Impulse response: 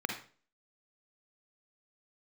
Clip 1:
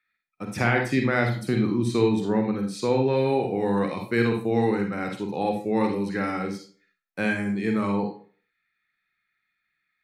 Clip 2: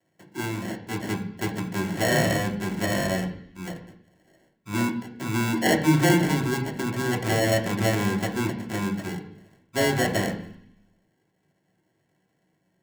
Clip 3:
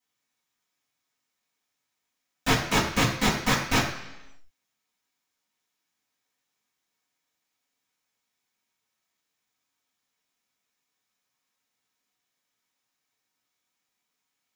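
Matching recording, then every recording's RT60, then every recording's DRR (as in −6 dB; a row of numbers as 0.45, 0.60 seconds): 1; 0.40, 0.65, 1.0 seconds; 3.0, −1.0, −9.5 decibels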